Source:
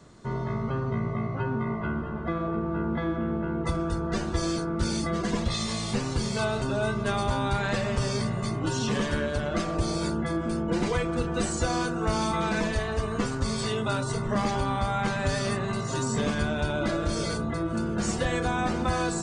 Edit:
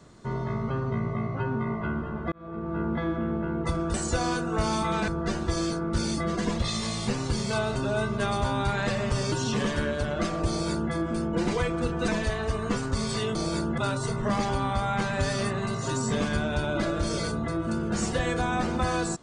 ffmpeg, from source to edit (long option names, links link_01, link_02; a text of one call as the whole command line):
ffmpeg -i in.wav -filter_complex "[0:a]asplit=8[link_01][link_02][link_03][link_04][link_05][link_06][link_07][link_08];[link_01]atrim=end=2.32,asetpts=PTS-STARTPTS,afade=type=out:start_time=2.316:duration=0.004:curve=hsin[link_09];[link_02]atrim=start=2.32:end=3.942,asetpts=PTS-STARTPTS,afade=type=in:duration=0.49[link_10];[link_03]atrim=start=11.428:end=12.572[link_11];[link_04]atrim=start=3.938:end=8.182[link_12];[link_05]atrim=start=8.668:end=11.432[link_13];[link_06]atrim=start=12.568:end=13.842[link_14];[link_07]atrim=start=9.838:end=10.272[link_15];[link_08]atrim=start=13.838[link_16];[link_09][link_10]concat=n=2:v=0:a=1[link_17];[link_17][link_11]acrossfade=duration=0.004:curve1=hsin:curve2=hsin[link_18];[link_18][link_12]acrossfade=duration=0.004:curve1=hsin:curve2=hsin[link_19];[link_19][link_13]acrossfade=duration=0.004:curve1=hsin:curve2=hsin[link_20];[link_20][link_14]acrossfade=duration=0.004:curve1=hsin:curve2=hsin[link_21];[link_21][link_15]acrossfade=duration=0.004:curve1=hsin:curve2=hsin[link_22];[link_22][link_16]acrossfade=duration=0.004:curve1=hsin:curve2=hsin" out.wav